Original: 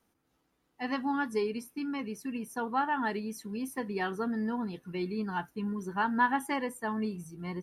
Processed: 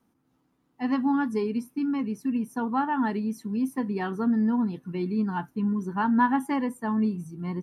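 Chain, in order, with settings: ten-band graphic EQ 125 Hz +9 dB, 250 Hz +11 dB, 1 kHz +6 dB; trim -3 dB

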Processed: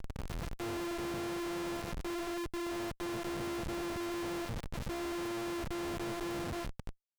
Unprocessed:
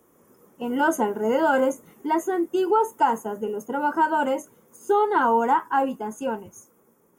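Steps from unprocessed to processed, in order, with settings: sorted samples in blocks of 128 samples; reverse; compression 20:1, threshold -30 dBFS, peak gain reduction 16.5 dB; reverse; Schmitt trigger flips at -50.5 dBFS; loudspeaker Doppler distortion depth 0.28 ms; trim -1.5 dB

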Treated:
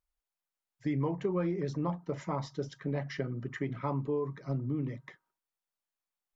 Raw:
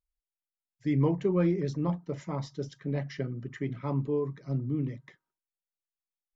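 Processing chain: peaking EQ 1 kHz +7 dB 1.9 oct; compression 3:1, threshold -30 dBFS, peak gain reduction 9 dB

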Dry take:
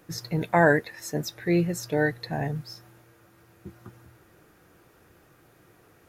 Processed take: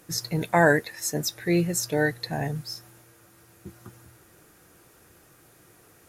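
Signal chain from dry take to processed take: peaking EQ 9.4 kHz +11 dB 1.8 oct

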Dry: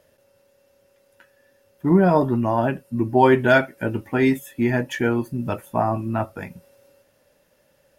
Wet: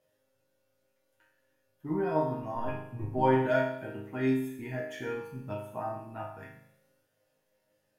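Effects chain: 2.54–3.22 s: octave divider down 1 oct, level +1 dB; chord resonator G#2 major, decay 0.75 s; trim +5 dB

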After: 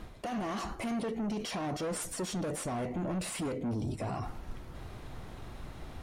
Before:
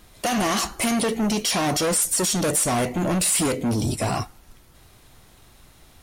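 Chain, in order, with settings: low-pass 1.2 kHz 6 dB/octave; reverse; compression 10:1, threshold -36 dBFS, peak gain reduction 15.5 dB; reverse; peak limiter -38 dBFS, peak gain reduction 10 dB; trim +8.5 dB

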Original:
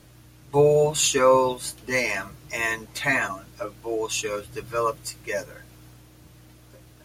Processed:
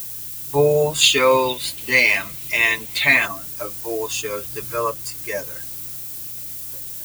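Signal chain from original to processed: 1.01–3.26 s: high-order bell 3 kHz +11 dB 1.3 oct; added noise violet -36 dBFS; tape noise reduction on one side only encoder only; trim +1.5 dB

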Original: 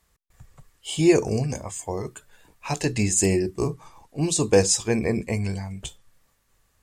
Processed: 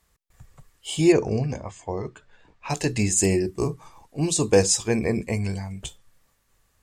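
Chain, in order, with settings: 1.12–2.70 s: Gaussian low-pass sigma 1.7 samples

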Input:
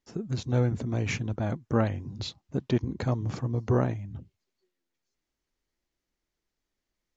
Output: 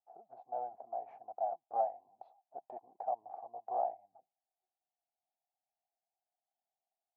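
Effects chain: Butterworth band-pass 740 Hz, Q 5.6; trim +7.5 dB

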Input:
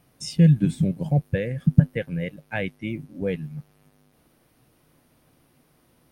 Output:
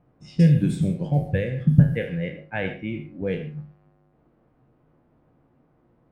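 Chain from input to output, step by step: spectral sustain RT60 0.33 s; gated-style reverb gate 160 ms flat, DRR 8 dB; level-controlled noise filter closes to 1.1 kHz, open at -16.5 dBFS; trim -1 dB

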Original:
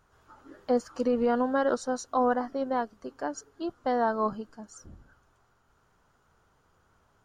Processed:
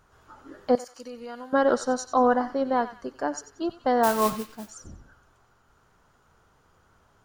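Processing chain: 0.75–1.53 s: pre-emphasis filter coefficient 0.9; 4.03–4.70 s: modulation noise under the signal 12 dB; band-passed feedback delay 92 ms, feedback 46%, band-pass 2.7 kHz, level -9.5 dB; trim +4.5 dB

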